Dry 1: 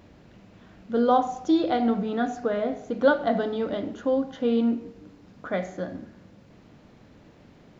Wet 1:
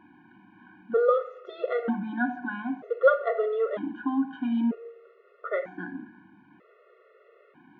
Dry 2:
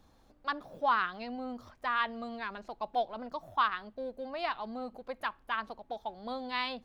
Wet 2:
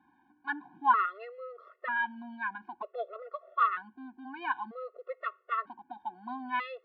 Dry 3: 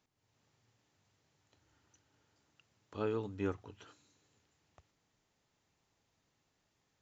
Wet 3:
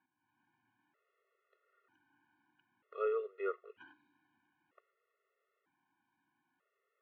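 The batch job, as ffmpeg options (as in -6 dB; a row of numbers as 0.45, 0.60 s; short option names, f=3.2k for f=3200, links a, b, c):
-af "highpass=270,equalizer=f=270:t=q:w=4:g=4,equalizer=f=450:t=q:w=4:g=3,equalizer=f=670:t=q:w=4:g=-5,equalizer=f=1k:t=q:w=4:g=5,equalizer=f=1.5k:t=q:w=4:g=8,lowpass=f=2.6k:w=0.5412,lowpass=f=2.6k:w=1.3066,afftfilt=real='re*gt(sin(2*PI*0.53*pts/sr)*(1-2*mod(floor(b*sr/1024/360),2)),0)':imag='im*gt(sin(2*PI*0.53*pts/sr)*(1-2*mod(floor(b*sr/1024/360),2)),0)':win_size=1024:overlap=0.75,volume=1dB"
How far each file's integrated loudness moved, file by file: -2.5, +1.5, +0.5 LU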